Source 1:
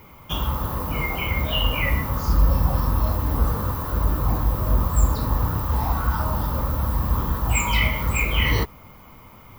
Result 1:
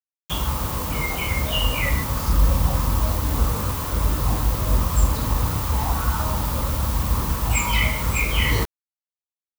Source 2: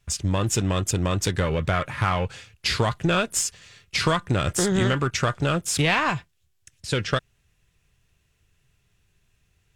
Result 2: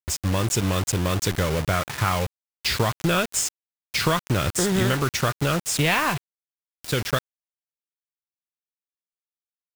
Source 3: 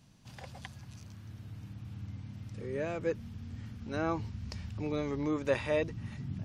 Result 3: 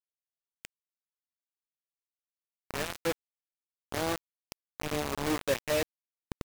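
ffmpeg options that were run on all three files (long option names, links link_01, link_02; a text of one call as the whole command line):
ffmpeg -i in.wav -af "acrusher=bits=4:mix=0:aa=0.000001" out.wav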